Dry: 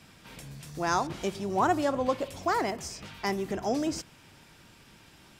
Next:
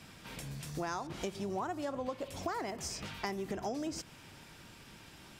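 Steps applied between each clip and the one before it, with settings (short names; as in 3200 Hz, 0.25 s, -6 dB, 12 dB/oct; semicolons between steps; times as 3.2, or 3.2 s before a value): compressor 10:1, threshold -35 dBFS, peak gain reduction 15 dB; gain +1 dB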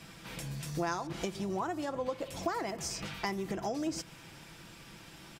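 comb 6 ms, depth 39%; gain +2 dB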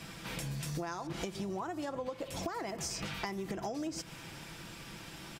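compressor, threshold -39 dBFS, peak gain reduction 11 dB; gain +4 dB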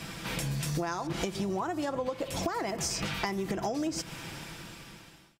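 ending faded out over 1.10 s; gain +6 dB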